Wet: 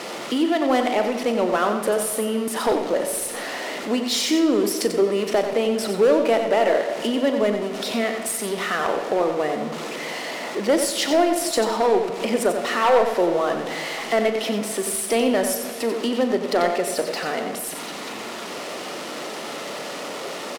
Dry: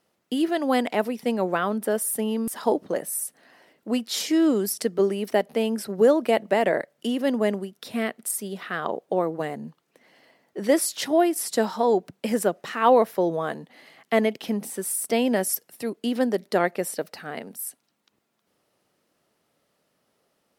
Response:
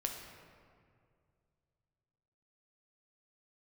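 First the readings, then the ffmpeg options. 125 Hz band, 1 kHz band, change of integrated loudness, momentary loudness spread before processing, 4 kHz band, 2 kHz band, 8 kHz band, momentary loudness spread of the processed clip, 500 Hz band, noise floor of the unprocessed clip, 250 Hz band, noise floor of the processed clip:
0.0 dB, +3.5 dB, +2.5 dB, 12 LU, +7.5 dB, +5.0 dB, +3.0 dB, 12 LU, +3.5 dB, -73 dBFS, +1.5 dB, -32 dBFS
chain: -filter_complex "[0:a]aeval=exprs='val(0)+0.5*0.0282*sgn(val(0))':c=same,highpass=270,bandreject=f=1.6k:w=13,asplit=2[a][b];[b]acompressor=threshold=-30dB:ratio=6,volume=0.5dB[c];[a][c]amix=inputs=2:normalize=0,volume=12.5dB,asoftclip=hard,volume=-12.5dB,adynamicsmooth=sensitivity=4.5:basefreq=4.8k,asplit=2[d][e];[e]adelay=39,volume=-13dB[f];[d][f]amix=inputs=2:normalize=0,asplit=2[g][h];[1:a]atrim=start_sample=2205,adelay=91[i];[h][i]afir=irnorm=-1:irlink=0,volume=-7dB[j];[g][j]amix=inputs=2:normalize=0"

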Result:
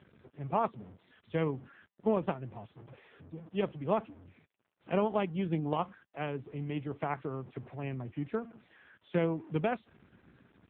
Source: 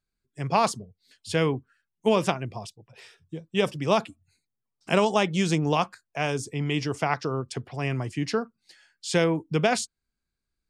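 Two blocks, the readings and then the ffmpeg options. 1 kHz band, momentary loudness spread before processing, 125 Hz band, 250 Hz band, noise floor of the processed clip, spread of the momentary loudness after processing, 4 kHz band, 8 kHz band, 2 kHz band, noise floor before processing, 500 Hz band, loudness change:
-8.5 dB, 14 LU, -8.0 dB, -7.0 dB, -78 dBFS, 16 LU, -19.0 dB, under -40 dB, -13.5 dB, -84 dBFS, -7.5 dB, -8.5 dB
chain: -af "aeval=exprs='val(0)+0.5*0.0237*sgn(val(0))':c=same,aeval=exprs='0.501*(cos(1*acos(clip(val(0)/0.501,-1,1)))-cos(1*PI/2))+0.0562*(cos(4*acos(clip(val(0)/0.501,-1,1)))-cos(4*PI/2))+0.01*(cos(5*acos(clip(val(0)/0.501,-1,1)))-cos(5*PI/2))+0.0316*(cos(6*acos(clip(val(0)/0.501,-1,1)))-cos(6*PI/2))+0.0447*(cos(7*acos(clip(val(0)/0.501,-1,1)))-cos(7*PI/2))':c=same,lowpass=f=1.2k:p=1,volume=-5dB" -ar 8000 -c:a libopencore_amrnb -b:a 6700

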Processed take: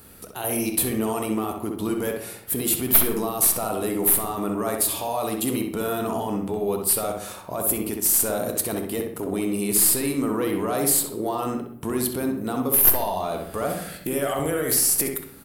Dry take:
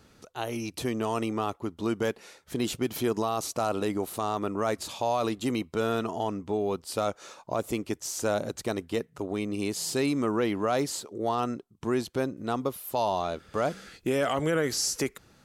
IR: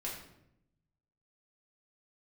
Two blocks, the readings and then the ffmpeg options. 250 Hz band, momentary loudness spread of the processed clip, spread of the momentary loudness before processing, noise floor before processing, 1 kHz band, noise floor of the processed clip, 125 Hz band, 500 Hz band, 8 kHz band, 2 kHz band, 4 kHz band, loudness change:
+4.0 dB, 11 LU, 7 LU, -60 dBFS, +1.5 dB, -42 dBFS, +2.5 dB, +2.5 dB, +14.0 dB, +2.0 dB, +3.0 dB, +7.5 dB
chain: -filter_complex "[0:a]alimiter=level_in=1.5dB:limit=-24dB:level=0:latency=1:release=15,volume=-1.5dB,aexciter=amount=14:drive=1.1:freq=8.9k,aeval=exprs='clip(val(0),-1,0.1)':c=same,asplit=2[a][b];[b]adelay=64,lowpass=f=2.6k:p=1,volume=-3.5dB,asplit=2[c][d];[d]adelay=64,lowpass=f=2.6k:p=1,volume=0.39,asplit=2[e][f];[f]adelay=64,lowpass=f=2.6k:p=1,volume=0.39,asplit=2[g][h];[h]adelay=64,lowpass=f=2.6k:p=1,volume=0.39,asplit=2[i][j];[j]adelay=64,lowpass=f=2.6k:p=1,volume=0.39[k];[a][c][e][g][i][k]amix=inputs=6:normalize=0,asplit=2[l][m];[1:a]atrim=start_sample=2205[n];[m][n]afir=irnorm=-1:irlink=0,volume=-5.5dB[o];[l][o]amix=inputs=2:normalize=0,volume=3.5dB"

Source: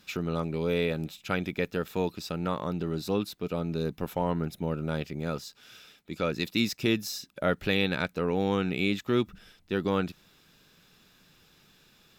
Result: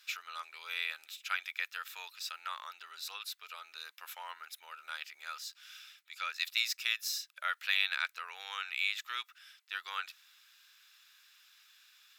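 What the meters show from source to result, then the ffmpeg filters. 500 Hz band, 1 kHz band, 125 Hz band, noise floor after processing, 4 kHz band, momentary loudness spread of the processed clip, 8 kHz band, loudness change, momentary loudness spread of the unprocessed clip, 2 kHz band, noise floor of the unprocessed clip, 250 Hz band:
-33.0 dB, -6.5 dB, under -40 dB, -69 dBFS, 0.0 dB, 16 LU, 0.0 dB, -7.0 dB, 7 LU, -0.5 dB, -62 dBFS, under -40 dB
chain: -af "highpass=f=1.3k:w=0.5412,highpass=f=1.3k:w=1.3066"

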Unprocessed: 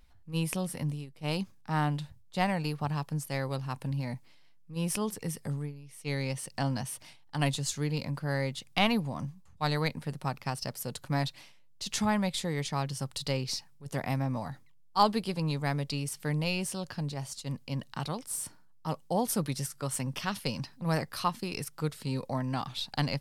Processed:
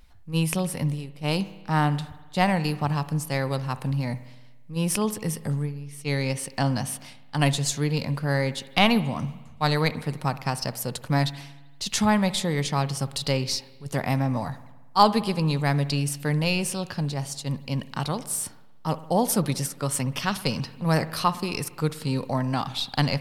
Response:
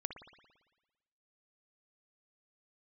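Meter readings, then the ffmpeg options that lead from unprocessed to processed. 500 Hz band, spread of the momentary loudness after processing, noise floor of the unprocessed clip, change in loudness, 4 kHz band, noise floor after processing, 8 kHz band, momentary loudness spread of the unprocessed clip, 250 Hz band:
+7.0 dB, 9 LU, -56 dBFS, +7.0 dB, +7.0 dB, -46 dBFS, +6.5 dB, 9 LU, +7.0 dB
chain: -filter_complex "[0:a]asplit=2[a][b];[1:a]atrim=start_sample=2205[c];[b][c]afir=irnorm=-1:irlink=0,volume=-4.5dB[d];[a][d]amix=inputs=2:normalize=0,volume=3.5dB"

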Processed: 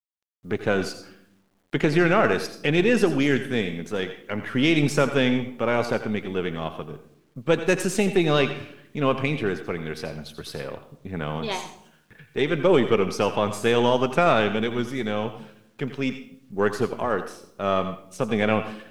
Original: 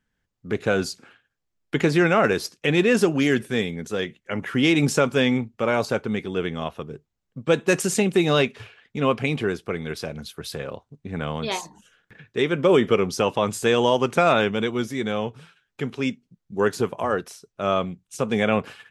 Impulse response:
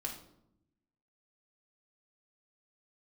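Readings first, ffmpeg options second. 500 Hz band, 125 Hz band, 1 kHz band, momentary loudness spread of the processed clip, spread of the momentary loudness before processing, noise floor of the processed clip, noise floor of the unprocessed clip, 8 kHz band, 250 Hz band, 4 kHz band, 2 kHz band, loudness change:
-1.0 dB, -0.5 dB, -0.5 dB, 15 LU, 14 LU, -62 dBFS, -79 dBFS, -4.5 dB, -1.0 dB, -1.5 dB, -1.0 dB, -1.0 dB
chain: -filter_complex "[0:a]aeval=exprs='if(lt(val(0),0),0.708*val(0),val(0))':c=same,highshelf=f=5.6k:g=-5,bandreject=f=7.1k:w=17,asplit=2[a][b];[1:a]atrim=start_sample=2205,lowshelf=f=500:g=-6.5,adelay=84[c];[b][c]afir=irnorm=-1:irlink=0,volume=-8.5dB[d];[a][d]amix=inputs=2:normalize=0,acrusher=bits=10:mix=0:aa=0.000001"

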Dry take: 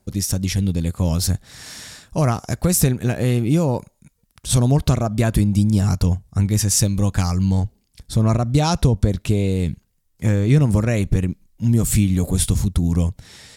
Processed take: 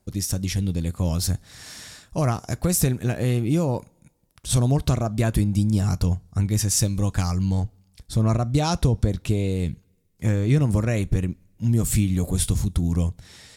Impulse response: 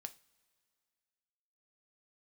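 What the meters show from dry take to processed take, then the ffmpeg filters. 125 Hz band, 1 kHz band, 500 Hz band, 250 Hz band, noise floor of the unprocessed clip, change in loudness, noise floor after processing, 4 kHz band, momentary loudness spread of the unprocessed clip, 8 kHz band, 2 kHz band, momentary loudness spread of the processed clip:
-3.5 dB, -4.0 dB, -4.0 dB, -4.5 dB, -65 dBFS, -4.0 dB, -63 dBFS, -4.0 dB, 9 LU, -4.0 dB, -4.0 dB, 9 LU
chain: -filter_complex "[0:a]asplit=2[a][b];[1:a]atrim=start_sample=2205,asetrate=70560,aresample=44100[c];[b][c]afir=irnorm=-1:irlink=0,volume=5dB[d];[a][d]amix=inputs=2:normalize=0,volume=-8dB"

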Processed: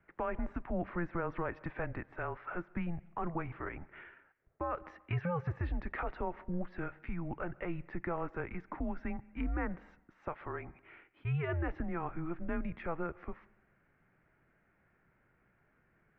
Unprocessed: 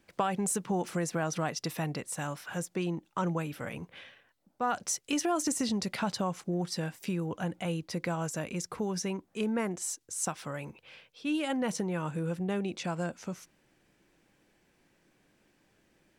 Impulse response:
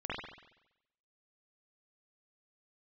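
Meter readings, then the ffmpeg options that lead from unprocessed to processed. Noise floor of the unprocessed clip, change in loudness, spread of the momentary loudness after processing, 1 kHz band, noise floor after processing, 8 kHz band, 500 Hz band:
-70 dBFS, -6.0 dB, 8 LU, -5.5 dB, -72 dBFS, under -40 dB, -5.5 dB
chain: -filter_complex "[0:a]highpass=f=180:t=q:w=0.5412,highpass=f=180:t=q:w=1.307,lowpass=f=2.1k:t=q:w=0.5176,lowpass=f=2.1k:t=q:w=0.7071,lowpass=f=2.1k:t=q:w=1.932,afreqshift=-170,crystalizer=i=5:c=0,asplit=2[a][b];[1:a]atrim=start_sample=2205,adelay=87[c];[b][c]afir=irnorm=-1:irlink=0,volume=-27.5dB[d];[a][d]amix=inputs=2:normalize=0,alimiter=limit=-23.5dB:level=0:latency=1:release=22,volume=-2.5dB"

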